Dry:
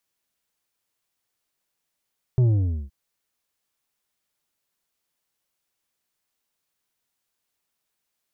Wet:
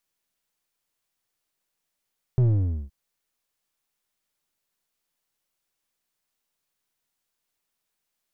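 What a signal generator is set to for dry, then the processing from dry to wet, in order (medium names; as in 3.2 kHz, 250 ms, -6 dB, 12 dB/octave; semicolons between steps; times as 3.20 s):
sub drop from 130 Hz, over 0.52 s, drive 7 dB, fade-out 0.48 s, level -15.5 dB
partial rectifier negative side -3 dB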